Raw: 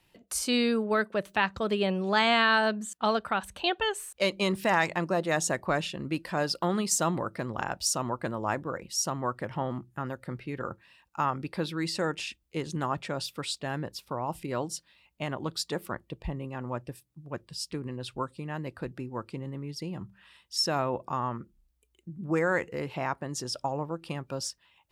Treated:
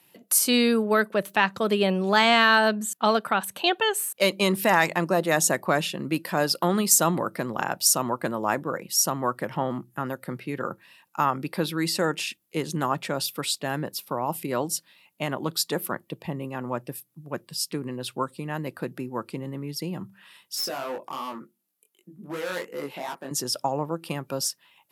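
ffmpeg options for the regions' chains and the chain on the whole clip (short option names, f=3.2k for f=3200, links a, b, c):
-filter_complex "[0:a]asettb=1/sr,asplit=3[a][b][c];[a]atrim=end=20.554[d];[b]atrim=start=20.55:end=23.31,asetpts=PTS-STARTPTS,afade=t=in:d=0.004:c=qsin,afade=t=out:st=2.756:d=0.004:c=qsin,highpass=230,asoftclip=type=hard:threshold=-30dB,flanger=delay=19.5:depth=3.4:speed=2.7[e];[c]atrim=start=23.306[f];[d][e]acrossfade=d=0.004:c1=hsin:c2=qsin[g];[g][f]acrossfade=d=0.004:c1=qsin:c2=hsin,highpass=f=140:w=0.5412,highpass=f=140:w=1.3066,equalizer=f=12k:w=1.6:g=15,acontrast=24"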